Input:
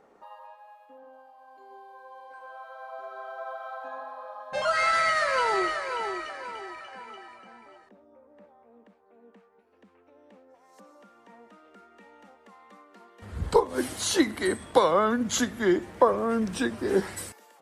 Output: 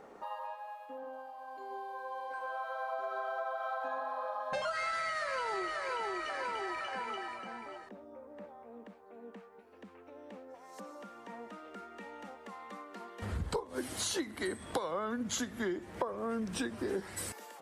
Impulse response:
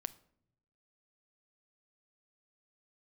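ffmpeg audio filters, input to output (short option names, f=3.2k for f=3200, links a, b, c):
-af "acompressor=threshold=-39dB:ratio=8,volume=5.5dB"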